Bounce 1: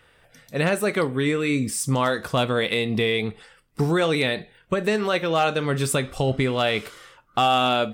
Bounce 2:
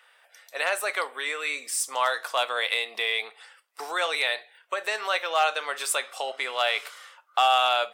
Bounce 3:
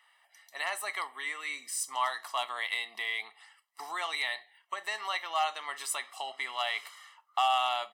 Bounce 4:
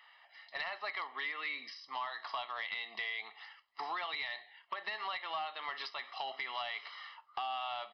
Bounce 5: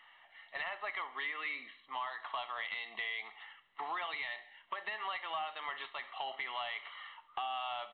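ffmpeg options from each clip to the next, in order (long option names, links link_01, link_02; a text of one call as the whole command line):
ffmpeg -i in.wav -af "highpass=frequency=660:width=0.5412,highpass=frequency=660:width=1.3066" out.wav
ffmpeg -i in.wav -af "aecho=1:1:1:0.82,volume=-8.5dB" out.wav
ffmpeg -i in.wav -af "acompressor=threshold=-38dB:ratio=16,aresample=11025,asoftclip=type=tanh:threshold=-33.5dB,aresample=44100,volume=4.5dB" out.wav
ffmpeg -i in.wav -af "aecho=1:1:69|138|207|276:0.112|0.0561|0.0281|0.014" -ar 8000 -c:a pcm_mulaw out.wav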